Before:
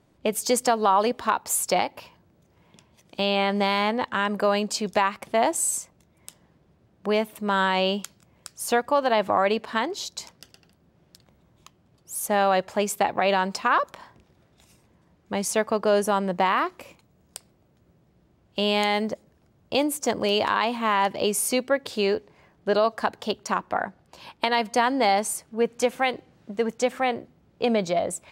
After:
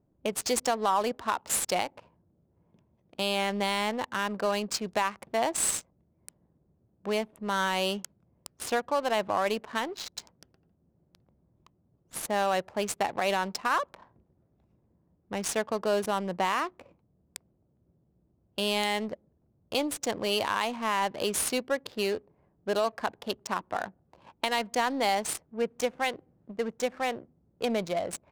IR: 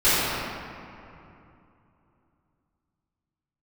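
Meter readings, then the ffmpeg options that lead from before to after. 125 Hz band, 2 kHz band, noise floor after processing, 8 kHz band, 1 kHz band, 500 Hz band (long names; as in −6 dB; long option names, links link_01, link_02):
−6.5 dB, −5.0 dB, −71 dBFS, −3.5 dB, −6.0 dB, −6.0 dB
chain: -af "aemphasis=mode=production:type=cd,adynamicsmooth=sensitivity=5.5:basefreq=630,volume=-6dB"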